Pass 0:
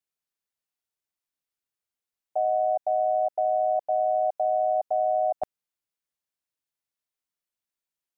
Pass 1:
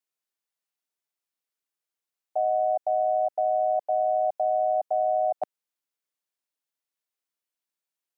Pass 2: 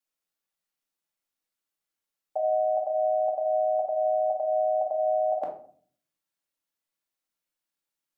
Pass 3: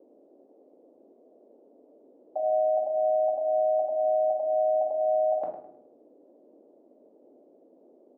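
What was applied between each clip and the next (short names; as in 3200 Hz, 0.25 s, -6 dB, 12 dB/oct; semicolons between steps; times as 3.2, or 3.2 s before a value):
HPF 240 Hz
shoebox room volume 530 m³, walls furnished, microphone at 2.3 m; gain -1.5 dB
band noise 250–630 Hz -57 dBFS; LPF 1000 Hz 6 dB/oct; feedback echo 0.104 s, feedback 33%, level -10.5 dB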